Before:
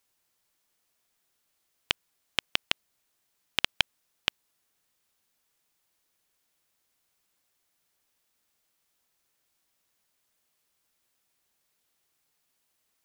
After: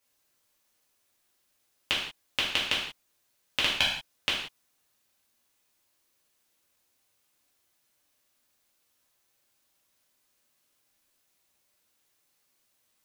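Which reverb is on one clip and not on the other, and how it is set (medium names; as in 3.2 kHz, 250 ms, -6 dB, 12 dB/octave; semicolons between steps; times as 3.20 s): gated-style reverb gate 210 ms falling, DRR -6.5 dB; trim -4.5 dB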